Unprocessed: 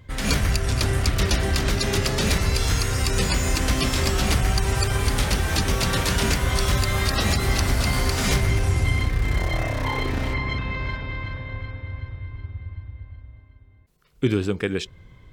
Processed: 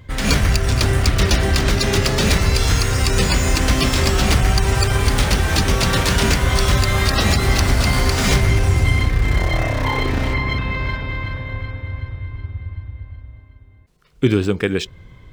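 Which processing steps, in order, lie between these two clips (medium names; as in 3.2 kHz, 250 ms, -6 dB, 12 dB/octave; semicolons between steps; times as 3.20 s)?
median filter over 3 samples; trim +5.5 dB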